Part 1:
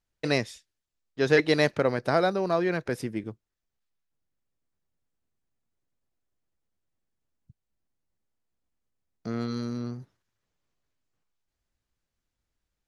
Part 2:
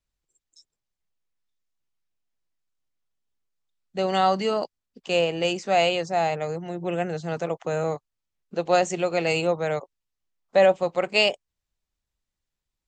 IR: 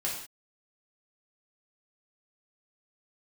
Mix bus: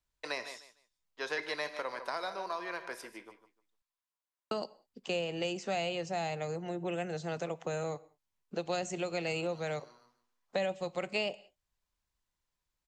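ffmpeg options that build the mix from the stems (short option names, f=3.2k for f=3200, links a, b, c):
-filter_complex "[0:a]highpass=690,equalizer=f=1k:t=o:w=0.21:g=12,volume=-7dB,asplit=3[a][b][c];[b]volume=-13dB[d];[c]volume=-11.5dB[e];[1:a]volume=-3.5dB,asplit=3[f][g][h];[f]atrim=end=3.82,asetpts=PTS-STARTPTS,afade=t=out:st=3.816:d=0.004:c=hsin[i];[g]atrim=start=3.82:end=4.51,asetpts=PTS-STARTPTS,volume=0[j];[h]atrim=start=4.51,asetpts=PTS-STARTPTS,afade=t=in:d=0.004:c=hsin[k];[i][j][k]concat=n=3:v=0:a=1,asplit=3[l][m][n];[m]volume=-23dB[o];[n]apad=whole_len=567844[p];[a][p]sidechaincompress=threshold=-42dB:ratio=8:attack=16:release=331[q];[2:a]atrim=start_sample=2205[r];[d][o]amix=inputs=2:normalize=0[s];[s][r]afir=irnorm=-1:irlink=0[t];[e]aecho=0:1:151|302|453:1|0.21|0.0441[u];[q][l][t][u]amix=inputs=4:normalize=0,acrossover=split=260|2400[v][w][x];[v]acompressor=threshold=-43dB:ratio=4[y];[w]acompressor=threshold=-35dB:ratio=4[z];[x]acompressor=threshold=-41dB:ratio=4[aa];[y][z][aa]amix=inputs=3:normalize=0"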